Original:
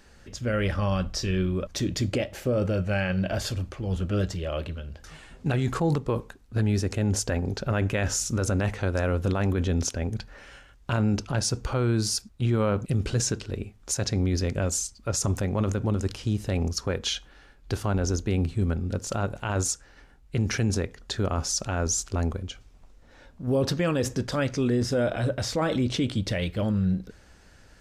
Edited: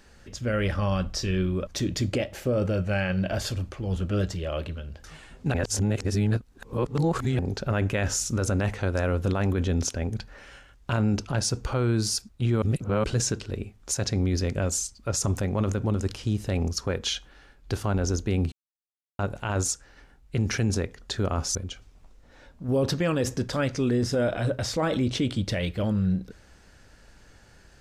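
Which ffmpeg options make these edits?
-filter_complex "[0:a]asplit=8[a][b][c][d][e][f][g][h];[a]atrim=end=5.542[i];[b]atrim=start=5.538:end=7.392,asetpts=PTS-STARTPTS,areverse[j];[c]atrim=start=7.388:end=12.622[k];[d]atrim=start=12.618:end=13.042,asetpts=PTS-STARTPTS,areverse[l];[e]atrim=start=13.038:end=18.52,asetpts=PTS-STARTPTS,afade=t=out:st=5.478:d=0.004:c=hsin[m];[f]atrim=start=18.52:end=19.19,asetpts=PTS-STARTPTS,volume=0[n];[g]atrim=start=19.19:end=21.552,asetpts=PTS-STARTPTS,afade=t=in:d=0.004:c=hsin[o];[h]atrim=start=22.338[p];[i][j]acrossfade=d=0.004:c1=hsin:c2=hsin[q];[q][k]acrossfade=d=0.004:c1=hsin:c2=hsin[r];[r][l]acrossfade=d=0.004:c1=hsin:c2=hsin[s];[m][n][o]concat=n=3:v=0:a=1[t];[s][t]acrossfade=d=0.004:c1=hsin:c2=hsin[u];[u][p]acrossfade=d=0.004:c1=hsin:c2=hsin"

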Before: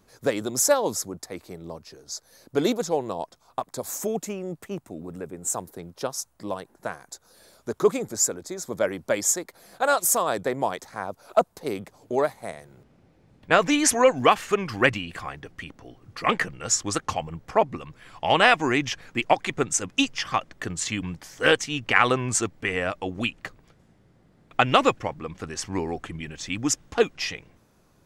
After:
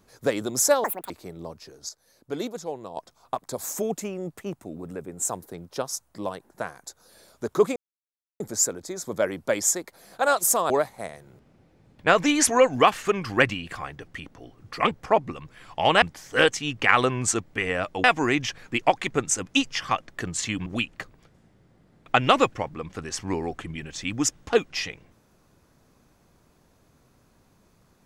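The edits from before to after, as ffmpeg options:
-filter_complex "[0:a]asplit=11[a][b][c][d][e][f][g][h][i][j][k];[a]atrim=end=0.844[l];[b]atrim=start=0.84:end=1.35,asetpts=PTS-STARTPTS,asetrate=86436,aresample=44100[m];[c]atrim=start=1.346:end=2.142[n];[d]atrim=start=2.138:end=3.222,asetpts=PTS-STARTPTS,volume=-8dB[o];[e]atrim=start=3.218:end=8.01,asetpts=PTS-STARTPTS,afade=t=out:st=4.788:d=0.004:c=hsin,apad=pad_dur=0.64[p];[f]atrim=start=8.01:end=10.312,asetpts=PTS-STARTPTS,afade=t=in:d=0.004:c=hsin[q];[g]atrim=start=12.138:end=16.352[r];[h]atrim=start=17.358:end=18.472[s];[i]atrim=start=21.088:end=23.112[t];[j]atrim=start=18.468:end=21.092[u];[k]atrim=start=23.108[v];[l][m]acrossfade=d=0.004:c1=hsin:c2=hsin[w];[w][n]acrossfade=d=0.004:c1=hsin:c2=hsin[x];[x][o]acrossfade=d=0.004:c1=hsin:c2=hsin[y];[p][q]concat=n=2:v=0:a=1[z];[y][z]acrossfade=d=0.004:c1=hsin:c2=hsin[aa];[aa][r]acrossfade=d=0.004:c1=hsin:c2=hsin[ab];[ab][s]acrossfade=d=0.004:c1=hsin:c2=hsin[ac];[ac][t]acrossfade=d=0.004:c1=hsin:c2=hsin[ad];[ad][u]acrossfade=d=0.004:c1=hsin:c2=hsin[ae];[ae][v]acrossfade=d=0.004:c1=hsin:c2=hsin"

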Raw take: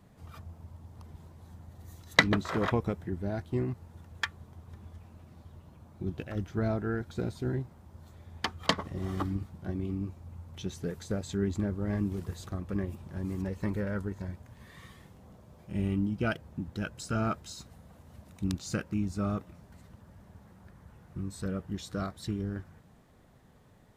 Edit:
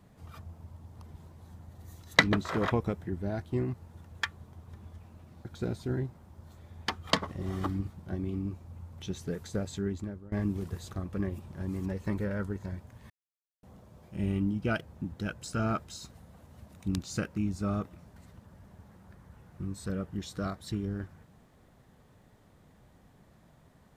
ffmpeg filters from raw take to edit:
-filter_complex "[0:a]asplit=5[a][b][c][d][e];[a]atrim=end=5.452[f];[b]atrim=start=7.008:end=11.88,asetpts=PTS-STARTPTS,afade=t=out:st=4.212:d=0.66:silence=0.1[g];[c]atrim=start=11.88:end=14.66,asetpts=PTS-STARTPTS,afade=t=in:d=0.004:c=hsin:silence=0.1,afade=t=out:st=2.776:d=0.004:c=hsin[h];[d]atrim=start=14.66:end=15.19,asetpts=PTS-STARTPTS,volume=0[i];[e]atrim=start=15.19,asetpts=PTS-STARTPTS,afade=t=in:d=0.004:c=hsin[j];[g][h][i][j]concat=n=4:v=0:a=1[k];[f][k]acrossfade=d=0.004:c1=hsin:c2=hsin"

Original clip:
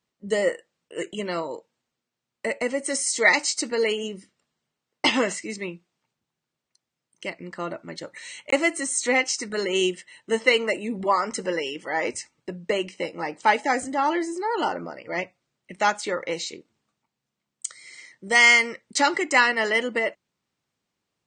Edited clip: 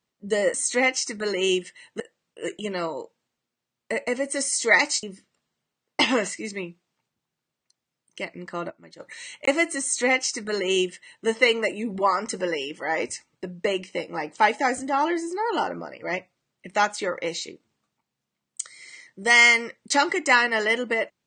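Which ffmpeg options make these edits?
-filter_complex "[0:a]asplit=6[a][b][c][d][e][f];[a]atrim=end=0.542[g];[b]atrim=start=8.858:end=10.322[h];[c]atrim=start=0.538:end=3.572[i];[d]atrim=start=4.078:end=7.752[j];[e]atrim=start=7.748:end=8.052,asetpts=PTS-STARTPTS,volume=-11.5dB[k];[f]atrim=start=8.048[l];[g][h]acrossfade=d=0.004:c1=hsin:c2=hsin[m];[m][i]acrossfade=d=0.004:c1=hsin:c2=hsin[n];[n][j]acrossfade=d=0.004:c1=hsin:c2=hsin[o];[o][k]acrossfade=d=0.004:c1=hsin:c2=hsin[p];[p][l]acrossfade=d=0.004:c1=hsin:c2=hsin"

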